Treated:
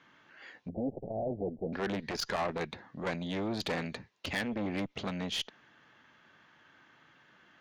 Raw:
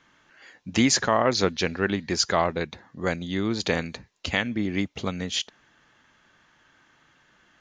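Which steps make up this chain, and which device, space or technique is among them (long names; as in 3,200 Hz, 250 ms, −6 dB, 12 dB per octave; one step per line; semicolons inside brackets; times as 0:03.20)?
valve radio (band-pass filter 100–4,100 Hz; tube saturation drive 25 dB, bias 0.3; saturating transformer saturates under 510 Hz)
0:00.69–0:01.73: Butterworth low-pass 750 Hz 72 dB per octave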